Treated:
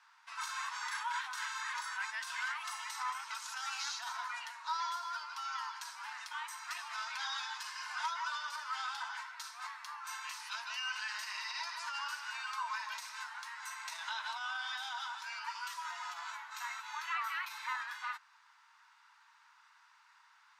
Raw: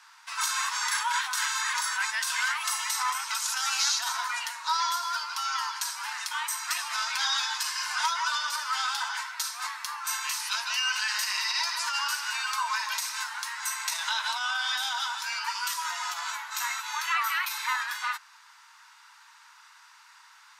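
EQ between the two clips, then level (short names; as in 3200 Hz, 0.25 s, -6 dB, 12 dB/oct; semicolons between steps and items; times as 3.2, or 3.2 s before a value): LPF 2500 Hz 6 dB/oct; -8.0 dB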